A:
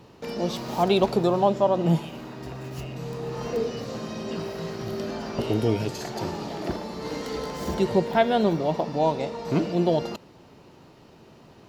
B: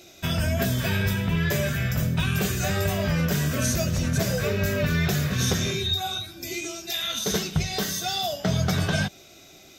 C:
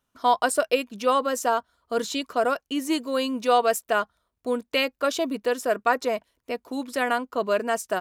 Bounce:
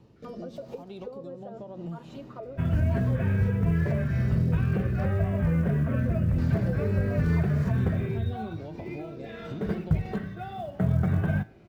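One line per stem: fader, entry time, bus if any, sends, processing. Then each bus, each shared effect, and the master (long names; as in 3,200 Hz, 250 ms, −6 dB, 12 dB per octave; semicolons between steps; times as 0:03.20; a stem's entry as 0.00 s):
−5.5 dB, 0.00 s, muted 0:05.08–0:06.38, bus A, no send, downward compressor, threshold −23 dBFS, peak gain reduction 8.5 dB
−4.0 dB, 2.35 s, no bus, no send, low-pass filter 2,100 Hz 24 dB per octave; floating-point word with a short mantissa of 4 bits
+2.0 dB, 0.00 s, bus A, no send, comb filter 7.5 ms, depth 84%; envelope filter 420–2,300 Hz, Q 4.1, down, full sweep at −16.5 dBFS
bus A: 0.0 dB, rotating-speaker cabinet horn 0.9 Hz; downward compressor 4 to 1, threshold −37 dBFS, peak gain reduction 16.5 dB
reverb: not used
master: low-shelf EQ 330 Hz +11.5 dB; tuned comb filter 110 Hz, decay 0.43 s, harmonics all, mix 50%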